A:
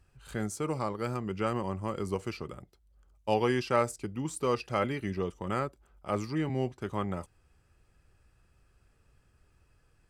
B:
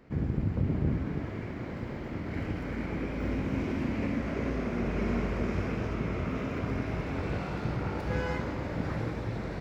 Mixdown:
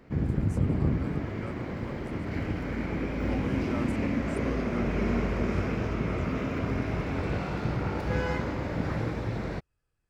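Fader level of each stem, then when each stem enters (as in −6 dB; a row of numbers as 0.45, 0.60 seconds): −13.5, +2.5 decibels; 0.00, 0.00 seconds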